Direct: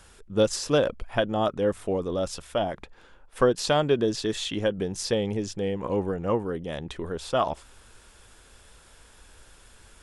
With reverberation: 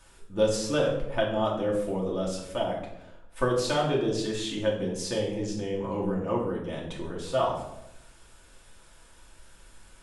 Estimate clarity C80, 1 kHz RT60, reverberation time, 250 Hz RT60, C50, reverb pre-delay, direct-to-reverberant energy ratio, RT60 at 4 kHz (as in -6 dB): 8.5 dB, 0.75 s, 0.85 s, 0.95 s, 5.0 dB, 3 ms, -4.0 dB, 0.55 s